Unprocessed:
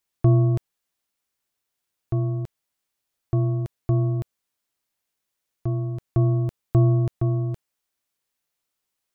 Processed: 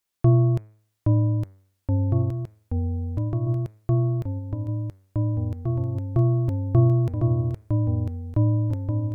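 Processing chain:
hum removal 107.4 Hz, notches 23
0:02.22–0:03.47: downward compressor, threshold −24 dBFS, peak gain reduction 6.5 dB
delay with pitch and tempo change per echo 790 ms, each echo −2 semitones, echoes 3

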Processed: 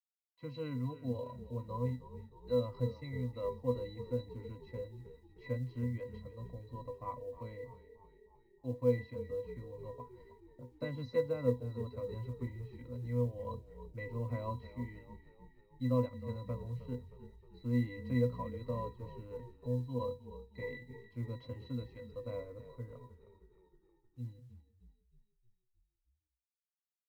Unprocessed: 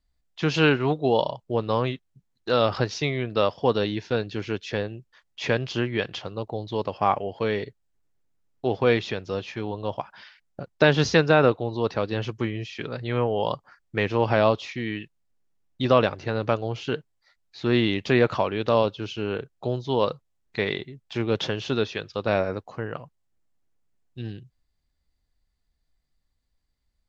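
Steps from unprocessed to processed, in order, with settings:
resonances in every octave B, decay 0.2 s
log-companded quantiser 8 bits
echo with shifted repeats 312 ms, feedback 60%, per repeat −31 Hz, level −14 dB
level −4 dB

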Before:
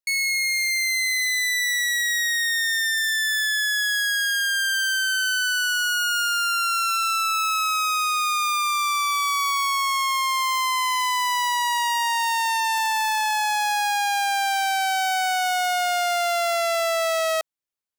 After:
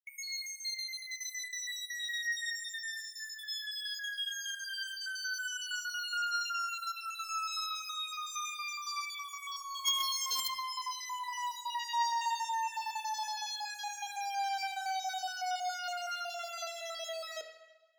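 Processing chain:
time-frequency cells dropped at random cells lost 51%
0:09.85–0:10.48: spectral tilt +4 dB per octave
tuned comb filter 470 Hz, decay 0.67 s, mix 80%
harmonic generator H 3 −7 dB, 5 −17 dB, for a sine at −20 dBFS
convolution reverb RT60 1.1 s, pre-delay 3 ms, DRR 5.5 dB
level +8 dB

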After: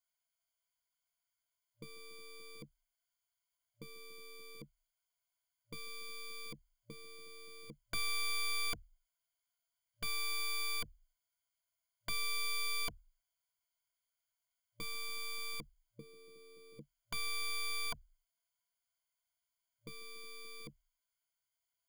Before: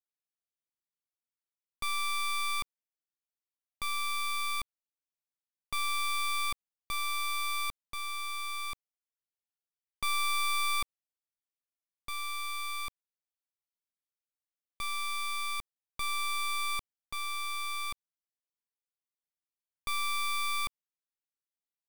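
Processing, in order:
brick-wall band-stop 110–590 Hz
wrap-around overflow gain 37.5 dB
EQ curve with evenly spaced ripples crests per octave 1.8, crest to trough 16 dB
level +2.5 dB

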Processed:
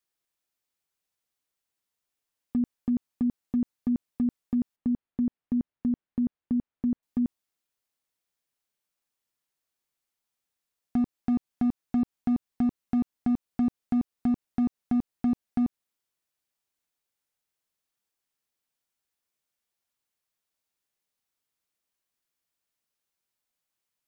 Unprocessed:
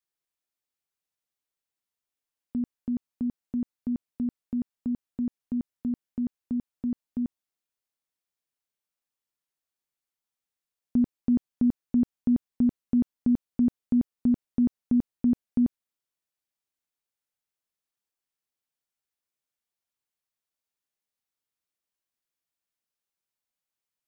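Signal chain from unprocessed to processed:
downward compressor 6 to 1, threshold −25 dBFS, peak gain reduction 6 dB
0:04.76–0:07.03: high-frequency loss of the air 350 metres
gain into a clipping stage and back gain 24.5 dB
level +4 dB

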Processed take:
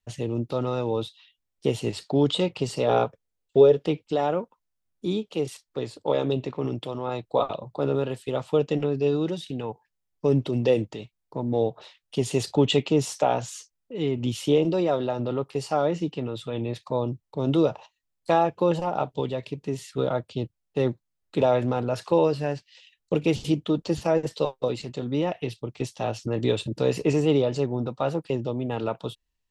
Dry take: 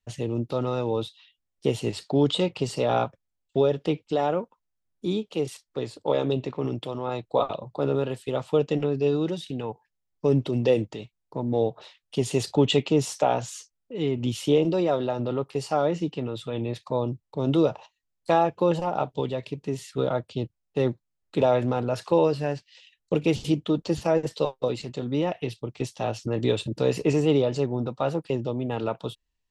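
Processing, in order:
0:02.87–0:03.80: parametric band 450 Hz +10.5 dB 0.35 octaves

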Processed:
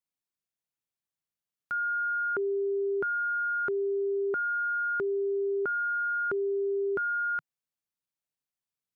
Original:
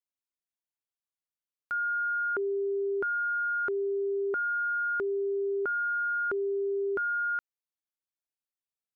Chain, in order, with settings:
parametric band 150 Hz +8.5 dB 1 octave

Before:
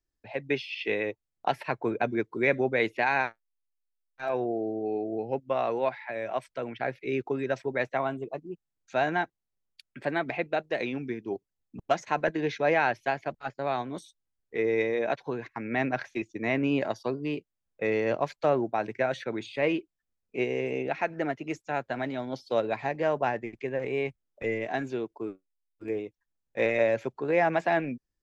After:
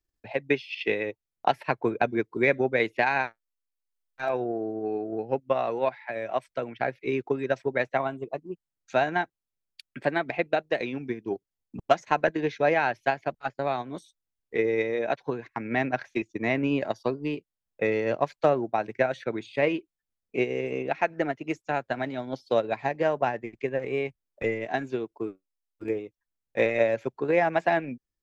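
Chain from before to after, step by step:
transient designer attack +5 dB, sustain −4 dB

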